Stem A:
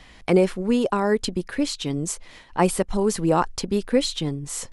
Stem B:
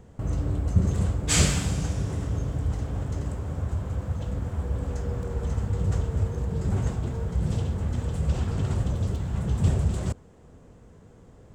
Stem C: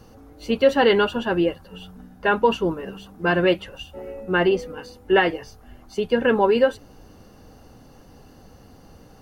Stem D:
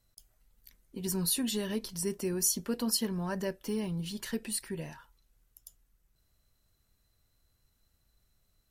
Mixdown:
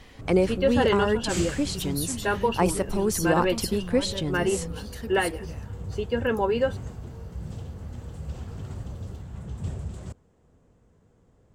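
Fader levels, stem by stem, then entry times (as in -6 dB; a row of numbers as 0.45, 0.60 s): -3.5, -10.0, -6.5, -3.0 dB; 0.00, 0.00, 0.00, 0.70 s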